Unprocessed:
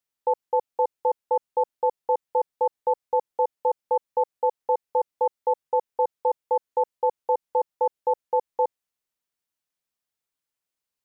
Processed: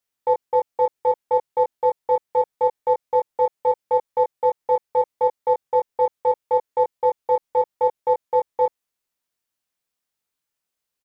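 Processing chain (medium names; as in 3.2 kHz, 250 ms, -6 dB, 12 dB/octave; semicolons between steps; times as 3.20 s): in parallel at -10.5 dB: saturation -25 dBFS, distortion -9 dB; on the sum: doubling 22 ms -3.5 dB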